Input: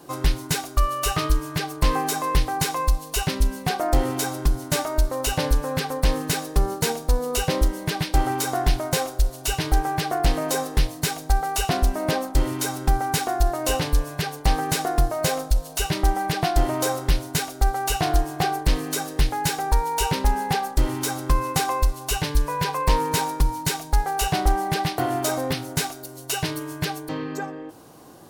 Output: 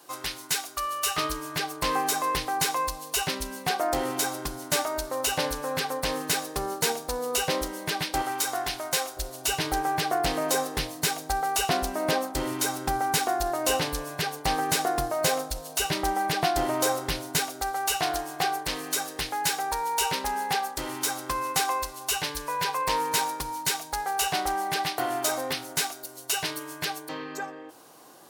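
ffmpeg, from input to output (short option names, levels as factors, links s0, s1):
-af "asetnsamples=n=441:p=0,asendcmd='1.18 highpass f 490;8.22 highpass f 1100;9.17 highpass f 320;17.61 highpass f 770',highpass=f=1400:p=1"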